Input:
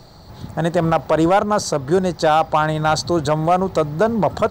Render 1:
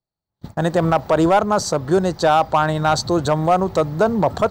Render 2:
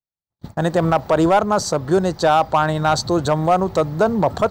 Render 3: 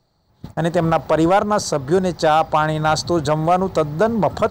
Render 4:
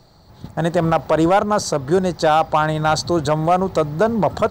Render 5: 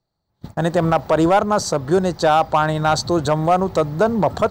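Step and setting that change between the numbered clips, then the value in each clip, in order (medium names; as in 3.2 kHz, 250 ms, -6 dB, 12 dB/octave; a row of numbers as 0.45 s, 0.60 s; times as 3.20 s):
gate, range: -46 dB, -59 dB, -21 dB, -7 dB, -34 dB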